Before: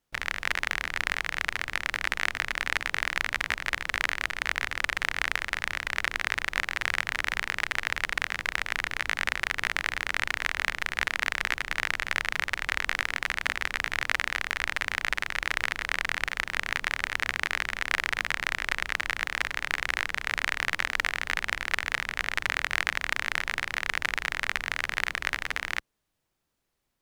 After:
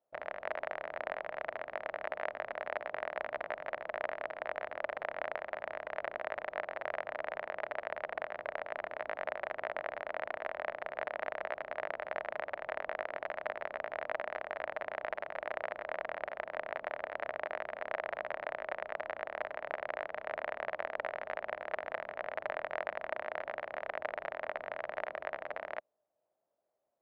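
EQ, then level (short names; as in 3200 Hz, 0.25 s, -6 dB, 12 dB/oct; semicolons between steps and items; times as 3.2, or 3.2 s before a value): band-pass 620 Hz, Q 6.8; air absorption 250 m; +12.5 dB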